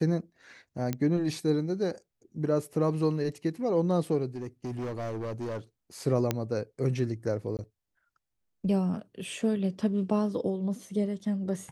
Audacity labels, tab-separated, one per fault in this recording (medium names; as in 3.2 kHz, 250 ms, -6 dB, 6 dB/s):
0.930000	0.930000	pop -17 dBFS
4.350000	5.590000	clipped -31 dBFS
6.310000	6.310000	pop -12 dBFS
7.570000	7.590000	dropout 18 ms